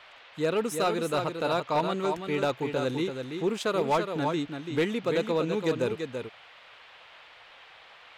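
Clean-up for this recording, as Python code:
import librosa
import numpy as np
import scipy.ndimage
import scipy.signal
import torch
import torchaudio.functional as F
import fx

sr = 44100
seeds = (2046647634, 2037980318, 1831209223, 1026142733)

y = fx.fix_declip(x, sr, threshold_db=-19.0)
y = fx.noise_reduce(y, sr, print_start_s=7.22, print_end_s=7.72, reduce_db=22.0)
y = fx.fix_echo_inverse(y, sr, delay_ms=335, level_db=-6.5)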